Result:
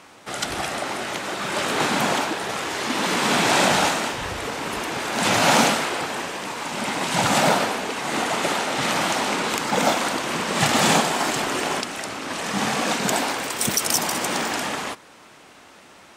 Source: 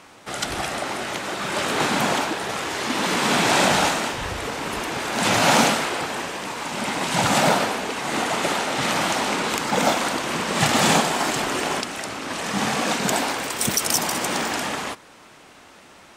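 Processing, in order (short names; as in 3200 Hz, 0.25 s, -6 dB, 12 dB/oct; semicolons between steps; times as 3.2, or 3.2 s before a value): low shelf 67 Hz -6.5 dB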